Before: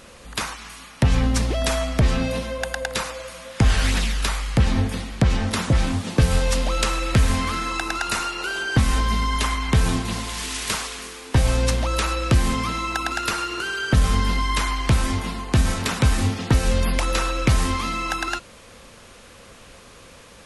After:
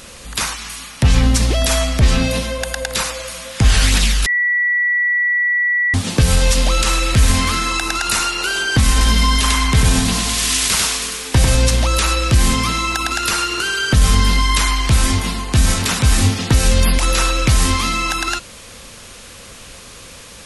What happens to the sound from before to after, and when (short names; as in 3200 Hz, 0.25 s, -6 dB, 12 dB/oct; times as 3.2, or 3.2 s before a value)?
4.26–5.94 bleep 1950 Hz -20.5 dBFS
8.91–11.55 echo 96 ms -3 dB
whole clip: high shelf 2400 Hz +10.5 dB; limiter -9 dBFS; low shelf 230 Hz +5 dB; gain +3 dB